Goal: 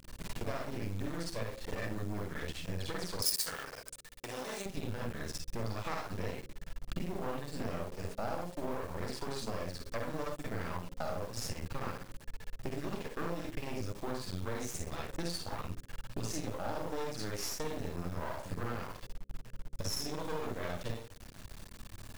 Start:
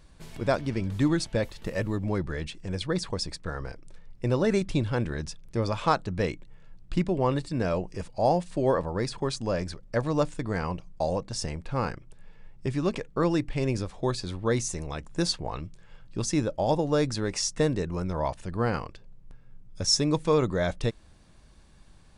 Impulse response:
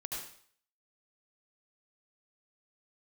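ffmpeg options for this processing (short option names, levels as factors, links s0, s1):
-filter_complex "[1:a]atrim=start_sample=2205,asetrate=70560,aresample=44100[s0];[0:a][s0]afir=irnorm=-1:irlink=0,aeval=exprs='max(val(0),0)':c=same,acompressor=threshold=0.00447:ratio=6,asettb=1/sr,asplit=3[s1][s2][s3];[s1]atrim=end=3.224[s4];[s2]atrim=start=3.22:end=4.66,asetpts=PTS-STARTPTS,afade=t=in:d=0.004:c=qsin,afade=t=out:st=1.436:d=0.004:c=qsin,aemphasis=mode=production:type=riaa[s5];[s3]atrim=start=4.656[s6];[s4][s5]acrossfade=d=0.004:c1=hsin:c2=qsin[s7];[s7][s6]acrossfade=d=0.004:c1=qsin:c2=hsin,acrusher=bits=10:mix=0:aa=0.000001,bandreject=f=67.18:t=h:w=4,bandreject=f=134.36:t=h:w=4,bandreject=f=201.54:t=h:w=4,bandreject=f=268.72:t=h:w=4,bandreject=f=335.9:t=h:w=4,bandreject=f=403.08:t=h:w=4,bandreject=f=470.26:t=h:w=4,bandreject=f=537.44:t=h:w=4,volume=4.47"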